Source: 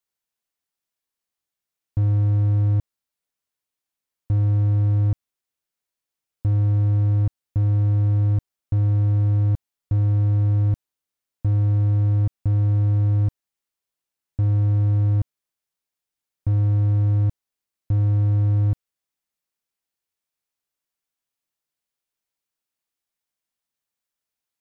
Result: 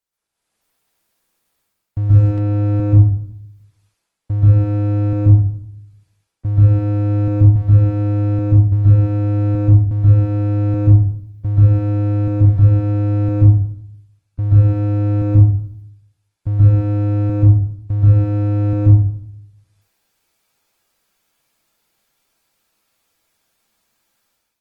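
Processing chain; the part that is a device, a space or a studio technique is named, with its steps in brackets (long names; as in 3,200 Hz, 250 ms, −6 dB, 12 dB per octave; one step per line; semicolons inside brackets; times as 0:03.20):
speakerphone in a meeting room (convolution reverb RT60 0.65 s, pre-delay 120 ms, DRR −9.5 dB; automatic gain control gain up to 13 dB; level −1 dB; Opus 24 kbit/s 48,000 Hz)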